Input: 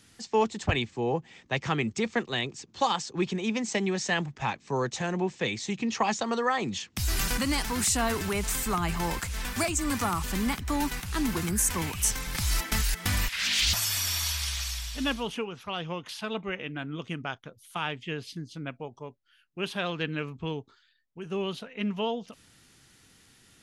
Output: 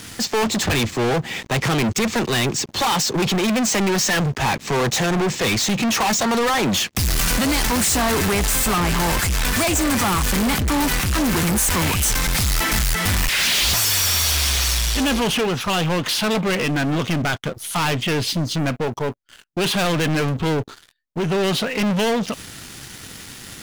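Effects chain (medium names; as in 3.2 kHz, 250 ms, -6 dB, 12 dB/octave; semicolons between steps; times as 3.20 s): saturation -22.5 dBFS, distortion -15 dB; waveshaping leveller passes 5; trim +5.5 dB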